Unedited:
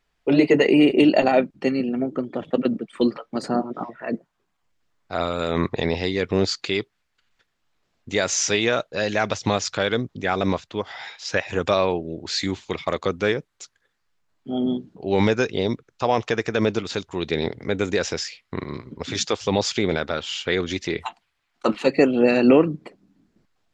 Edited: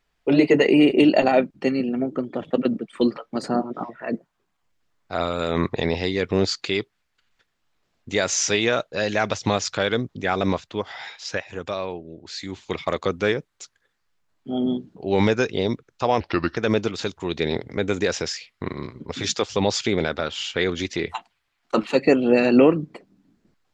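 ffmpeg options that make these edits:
-filter_complex "[0:a]asplit=5[a][b][c][d][e];[a]atrim=end=11.45,asetpts=PTS-STARTPTS,afade=t=out:st=11.21:d=0.24:silence=0.375837[f];[b]atrim=start=11.45:end=12.48,asetpts=PTS-STARTPTS,volume=-8.5dB[g];[c]atrim=start=12.48:end=16.204,asetpts=PTS-STARTPTS,afade=t=in:d=0.24:silence=0.375837[h];[d]atrim=start=16.2:end=16.48,asetpts=PTS-STARTPTS,asetrate=33516,aresample=44100,atrim=end_sample=16247,asetpts=PTS-STARTPTS[i];[e]atrim=start=16.476[j];[f][g][h]concat=n=3:v=0:a=1[k];[k][i]acrossfade=d=0.004:c1=hsin:c2=hsin[l];[l][j]acrossfade=d=0.004:c1=hsin:c2=hsin"

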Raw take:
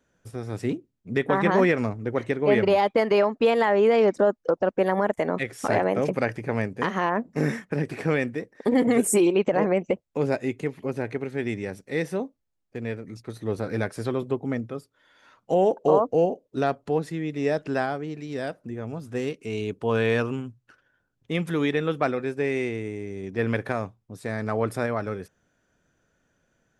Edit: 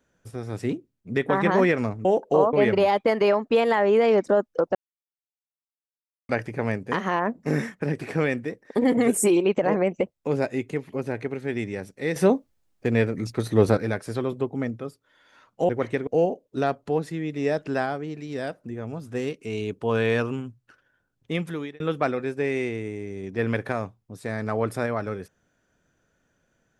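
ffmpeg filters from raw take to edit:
-filter_complex "[0:a]asplit=10[a][b][c][d][e][f][g][h][i][j];[a]atrim=end=2.052[k];[b]atrim=start=15.588:end=16.072[l];[c]atrim=start=2.428:end=4.65,asetpts=PTS-STARTPTS,afade=t=out:st=2.218:d=0.004:c=hsin[m];[d]atrim=start=4.65:end=6.19,asetpts=PTS-STARTPTS,volume=0[n];[e]atrim=start=6.19:end=12.062,asetpts=PTS-STARTPTS,afade=t=in:d=0.004:c=hsin[o];[f]atrim=start=12.058:end=13.672,asetpts=PTS-STARTPTS,volume=10dB[p];[g]atrim=start=13.668:end=15.592[q];[h]atrim=start=2.048:end=2.432[r];[i]atrim=start=16.068:end=21.8,asetpts=PTS-STARTPTS,afade=t=out:st=5.262:d=0.47[s];[j]atrim=start=21.8,asetpts=PTS-STARTPTS,afade=t=in:d=0.004:c=hsin[t];[k][l]acrossfade=d=0.004:c1=hsin:c2=hsin[u];[m][n][o]concat=n=3:v=0:a=1[v];[u][v]acrossfade=d=0.004:c1=hsin:c2=hsin[w];[w][p]acrossfade=d=0.004:c1=hsin:c2=hsin[x];[x][q]acrossfade=d=0.004:c1=hsin:c2=hsin[y];[y][r]acrossfade=d=0.004:c1=hsin:c2=hsin[z];[s][t]concat=n=2:v=0:a=1[aa];[z][aa]acrossfade=d=0.004:c1=hsin:c2=hsin"

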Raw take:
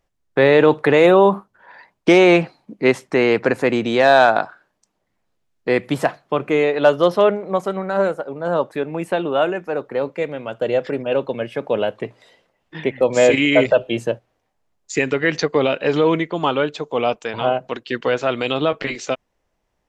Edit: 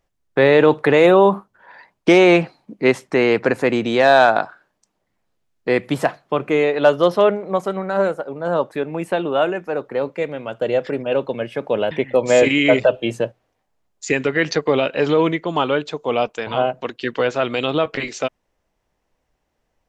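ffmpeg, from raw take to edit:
-filter_complex "[0:a]asplit=2[a][b];[a]atrim=end=11.912[c];[b]atrim=start=12.778[d];[c][d]acrossfade=d=0.004:c1=hsin:c2=hsin"

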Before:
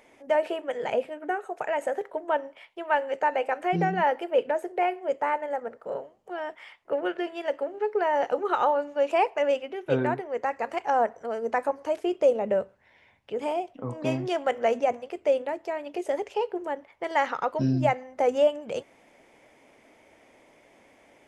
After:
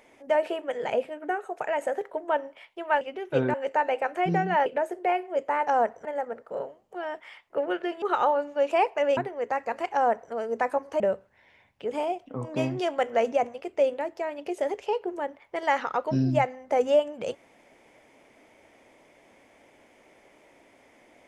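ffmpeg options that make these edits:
-filter_complex "[0:a]asplit=9[a][b][c][d][e][f][g][h][i];[a]atrim=end=3.012[j];[b]atrim=start=9.568:end=10.102[k];[c]atrim=start=3.008:end=4.132[l];[d]atrim=start=4.388:end=5.402[m];[e]atrim=start=10.868:end=11.252[n];[f]atrim=start=5.398:end=7.372[o];[g]atrim=start=8.418:end=9.572[p];[h]atrim=start=10.098:end=11.932[q];[i]atrim=start=12.478[r];[j][k]acrossfade=d=0.004:c1=hsin:c2=hsin[s];[s][l]acrossfade=d=0.004:c1=hsin:c2=hsin[t];[t][m]acrossfade=d=0.004:c1=hsin:c2=hsin[u];[u][n]acrossfade=d=0.004:c1=hsin:c2=hsin[v];[v][o]acrossfade=d=0.004:c1=hsin:c2=hsin[w];[w][p]acrossfade=d=0.004:c1=hsin:c2=hsin[x];[x][q]acrossfade=d=0.004:c1=hsin:c2=hsin[y];[y][r]acrossfade=d=0.004:c1=hsin:c2=hsin"

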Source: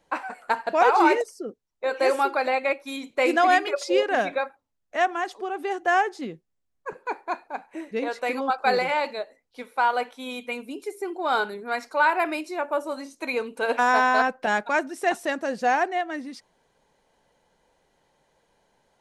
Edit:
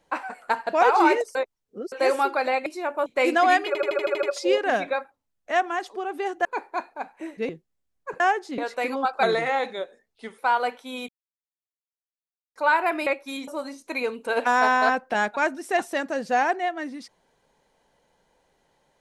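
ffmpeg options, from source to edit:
-filter_complex "[0:a]asplit=22[a][b][c][d][e][f][g][h][i][j][k][l][m][n][o][p][q][r][s][t][u][v];[a]atrim=end=1.352[w];[b]atrim=start=1.348:end=1.922,asetpts=PTS-STARTPTS,areverse[x];[c]atrim=start=1.918:end=2.662[y];[d]atrim=start=12.398:end=12.802[z];[e]atrim=start=3.068:end=3.762[aa];[f]atrim=start=3.678:end=3.762[ab];[g]atrim=start=3.678:end=3.762[ac];[h]atrim=start=3.678:end=3.762[ad];[i]atrim=start=3.678:end=3.762[ae];[j]atrim=start=3.678:end=3.762[af];[k]atrim=start=3.678:end=3.762[ag];[l]atrim=start=3.678:end=5.902[ah];[m]atrim=start=6.988:end=8.032[ai];[n]atrim=start=6.278:end=6.992[aj];[o]atrim=start=5.898:end=6.282[ak];[p]atrim=start=8.028:end=8.684[al];[q]atrim=start=8.68:end=9.72,asetpts=PTS-STARTPTS,asetrate=39690,aresample=44100[am];[r]atrim=start=9.716:end=10.42,asetpts=PTS-STARTPTS,afade=t=out:st=0.7:d=0.004:c=hsin[an];[s]atrim=start=10.42:end=11.89,asetpts=PTS-STARTPTS,volume=0[ao];[t]atrim=start=11.89:end=12.402,asetpts=PTS-STARTPTS,afade=t=in:d=0.004:c=hsin[ap];[u]atrim=start=2.658:end=3.072[aq];[v]atrim=start=12.798[ar];[w][x]acrossfade=d=0.004:c1=hsin:c2=hsin[as];[as][y]acrossfade=d=0.004:c1=hsin:c2=hsin[at];[at][z]acrossfade=d=0.004:c1=hsin:c2=hsin[au];[au][aa]acrossfade=d=0.004:c1=hsin:c2=hsin[av];[av][ab]acrossfade=d=0.004:c1=hsin:c2=hsin[aw];[aw][ac]acrossfade=d=0.004:c1=hsin:c2=hsin[ax];[ax][ad]acrossfade=d=0.004:c1=hsin:c2=hsin[ay];[ay][ae]acrossfade=d=0.004:c1=hsin:c2=hsin[az];[az][af]acrossfade=d=0.004:c1=hsin:c2=hsin[ba];[ba][ag]acrossfade=d=0.004:c1=hsin:c2=hsin[bb];[bb][ah]acrossfade=d=0.004:c1=hsin:c2=hsin[bc];[bc][ai]acrossfade=d=0.004:c1=hsin:c2=hsin[bd];[bd][aj]acrossfade=d=0.004:c1=hsin:c2=hsin[be];[be][ak]acrossfade=d=0.004:c1=hsin:c2=hsin[bf];[bf][al]acrossfade=d=0.004:c1=hsin:c2=hsin[bg];[bg][am]acrossfade=d=0.004:c1=hsin:c2=hsin[bh];[an][ao][ap]concat=n=3:v=0:a=1[bi];[bh][bi]acrossfade=d=0.004:c1=hsin:c2=hsin[bj];[bj][aq]acrossfade=d=0.004:c1=hsin:c2=hsin[bk];[bk][ar]acrossfade=d=0.004:c1=hsin:c2=hsin"

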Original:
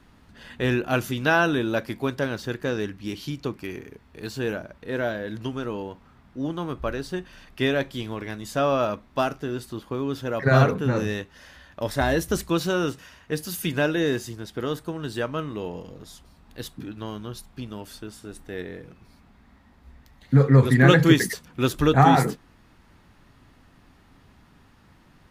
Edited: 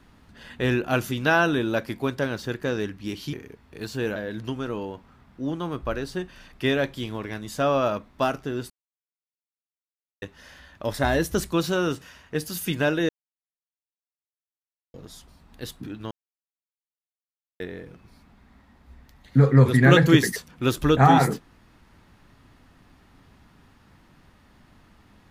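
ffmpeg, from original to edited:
-filter_complex "[0:a]asplit=9[a][b][c][d][e][f][g][h][i];[a]atrim=end=3.332[j];[b]atrim=start=3.748:end=4.582[k];[c]atrim=start=5.128:end=9.67,asetpts=PTS-STARTPTS,afade=t=out:st=4.538:d=0.004:c=hsin[l];[d]atrim=start=9.67:end=11.19,asetpts=PTS-STARTPTS,volume=0[m];[e]atrim=start=11.19:end=14.06,asetpts=PTS-STARTPTS,afade=t=in:d=0.004:c=hsin,afade=t=out:st=2.866:d=0.004:c=hsin[n];[f]atrim=start=14.06:end=15.91,asetpts=PTS-STARTPTS,volume=0[o];[g]atrim=start=15.91:end=17.08,asetpts=PTS-STARTPTS,afade=t=in:d=0.004:c=hsin,afade=t=out:st=1.166:d=0.004:c=hsin[p];[h]atrim=start=17.08:end=18.57,asetpts=PTS-STARTPTS,volume=0[q];[i]atrim=start=18.57,asetpts=PTS-STARTPTS,afade=t=in:d=0.004:c=hsin[r];[j][k]acrossfade=d=0.004:c1=hsin:c2=hsin[s];[l][m][n][o][p][q][r]concat=n=7:v=0:a=1[t];[s][t]acrossfade=d=0.004:c1=hsin:c2=hsin"

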